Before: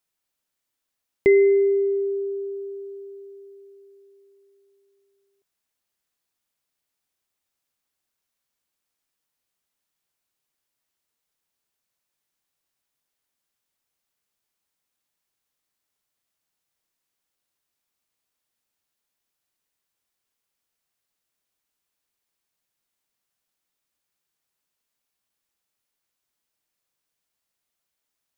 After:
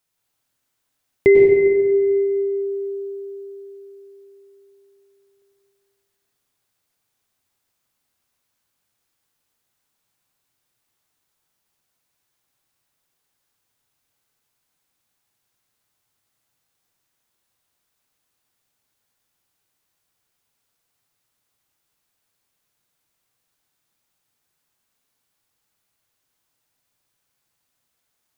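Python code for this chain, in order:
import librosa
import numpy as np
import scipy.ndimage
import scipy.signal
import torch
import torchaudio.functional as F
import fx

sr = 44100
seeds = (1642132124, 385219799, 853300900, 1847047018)

y = fx.peak_eq(x, sr, hz=110.0, db=7.5, octaves=0.52)
y = fx.rev_plate(y, sr, seeds[0], rt60_s=1.9, hf_ratio=0.55, predelay_ms=85, drr_db=-2.0)
y = F.gain(torch.from_numpy(y), 3.5).numpy()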